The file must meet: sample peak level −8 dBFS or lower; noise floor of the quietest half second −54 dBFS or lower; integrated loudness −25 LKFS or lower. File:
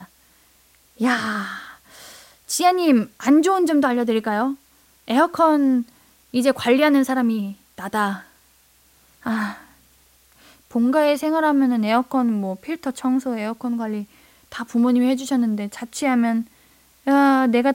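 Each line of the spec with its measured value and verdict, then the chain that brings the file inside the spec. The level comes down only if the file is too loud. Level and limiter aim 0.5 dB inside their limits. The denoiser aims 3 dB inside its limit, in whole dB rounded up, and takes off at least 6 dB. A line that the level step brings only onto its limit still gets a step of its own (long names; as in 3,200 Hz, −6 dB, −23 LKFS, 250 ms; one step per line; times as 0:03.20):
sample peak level −5.5 dBFS: out of spec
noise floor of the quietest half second −57 dBFS: in spec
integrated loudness −20.0 LKFS: out of spec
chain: level −5.5 dB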